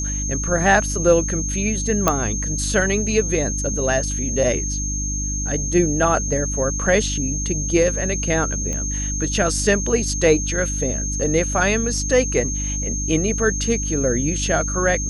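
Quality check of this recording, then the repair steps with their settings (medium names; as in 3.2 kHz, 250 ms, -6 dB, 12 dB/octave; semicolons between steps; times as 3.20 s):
hum 50 Hz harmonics 6 -26 dBFS
whine 6.4 kHz -25 dBFS
2.08 s: pop -1 dBFS
8.73 s: pop -15 dBFS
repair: de-click; de-hum 50 Hz, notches 6; band-stop 6.4 kHz, Q 30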